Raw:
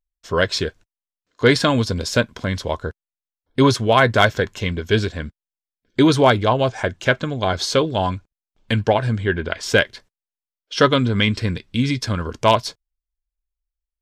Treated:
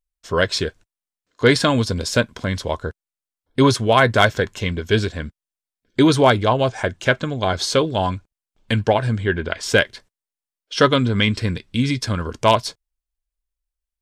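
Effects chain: bell 9000 Hz +4.5 dB 0.47 oct

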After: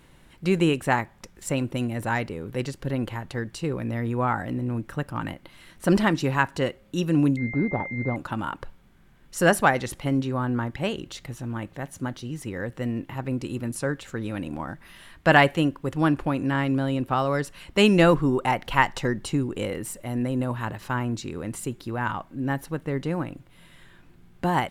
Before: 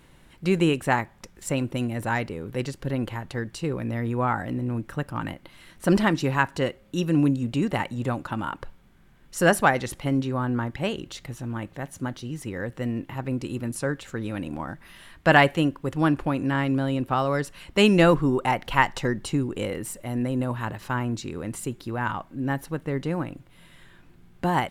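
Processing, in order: 7.37–8.16 pulse-width modulation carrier 2100 Hz

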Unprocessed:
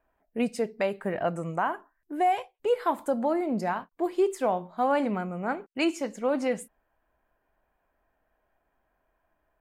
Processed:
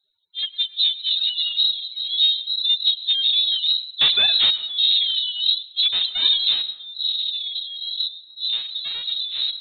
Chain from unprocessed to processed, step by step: spectrum mirrored in octaves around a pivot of 430 Hz; soft clip -24.5 dBFS, distortion -12 dB; 4.01–4.51 sample leveller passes 5; echoes that change speed 0.251 s, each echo -6 st, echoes 3, each echo -6 dB; reverb removal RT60 1.1 s; AGC gain up to 11 dB; dynamic EQ 1800 Hz, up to -3 dB, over -37 dBFS, Q 1.4; inverted band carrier 4000 Hz; on a send: reverb RT60 1.1 s, pre-delay 93 ms, DRR 16 dB

